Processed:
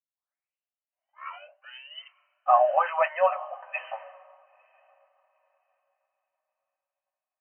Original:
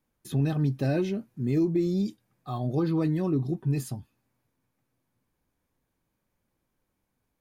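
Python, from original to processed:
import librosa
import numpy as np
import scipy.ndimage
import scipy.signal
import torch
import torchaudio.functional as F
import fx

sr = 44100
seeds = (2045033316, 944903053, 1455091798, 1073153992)

p1 = fx.tape_start_head(x, sr, length_s=2.39)
p2 = fx.rider(p1, sr, range_db=10, speed_s=0.5)
p3 = p1 + (p2 * librosa.db_to_amplitude(1.0))
p4 = fx.brickwall_bandpass(p3, sr, low_hz=530.0, high_hz=3100.0)
p5 = p4 + fx.echo_diffused(p4, sr, ms=927, feedback_pct=47, wet_db=-14.0, dry=0)
p6 = fx.band_widen(p5, sr, depth_pct=100)
y = p6 * librosa.db_to_amplitude(3.5)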